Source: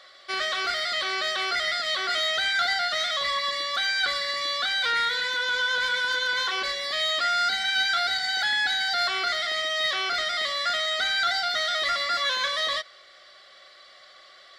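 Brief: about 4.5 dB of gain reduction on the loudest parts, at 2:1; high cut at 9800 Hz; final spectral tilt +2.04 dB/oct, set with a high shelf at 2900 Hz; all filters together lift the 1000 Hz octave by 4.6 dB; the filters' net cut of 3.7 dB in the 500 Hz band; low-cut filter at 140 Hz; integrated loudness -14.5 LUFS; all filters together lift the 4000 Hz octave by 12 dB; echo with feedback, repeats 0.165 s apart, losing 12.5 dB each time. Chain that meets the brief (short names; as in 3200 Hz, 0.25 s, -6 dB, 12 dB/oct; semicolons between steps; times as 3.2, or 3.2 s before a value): HPF 140 Hz; LPF 9800 Hz; bell 500 Hz -9 dB; bell 1000 Hz +6.5 dB; high shelf 2900 Hz +6.5 dB; bell 4000 Hz +9 dB; compressor 2:1, threshold -20 dBFS; feedback echo 0.165 s, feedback 24%, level -12.5 dB; gain +3.5 dB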